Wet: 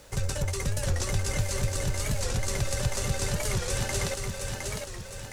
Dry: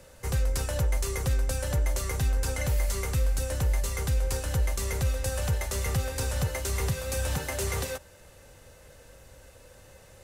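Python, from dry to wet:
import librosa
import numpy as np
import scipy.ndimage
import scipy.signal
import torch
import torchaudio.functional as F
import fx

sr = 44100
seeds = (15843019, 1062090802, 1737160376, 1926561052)

y = scipy.signal.sosfilt(scipy.signal.butter(2, 7000.0, 'lowpass', fs=sr, output='sos'), x)
y = fx.high_shelf(y, sr, hz=5000.0, db=10.5)
y = fx.dmg_noise_colour(y, sr, seeds[0], colour='pink', level_db=-55.0)
y = fx.stretch_grains(y, sr, factor=0.52, grain_ms=22.0)
y = fx.echo_feedback(y, sr, ms=712, feedback_pct=48, wet_db=-4)
y = fx.record_warp(y, sr, rpm=45.0, depth_cents=160.0)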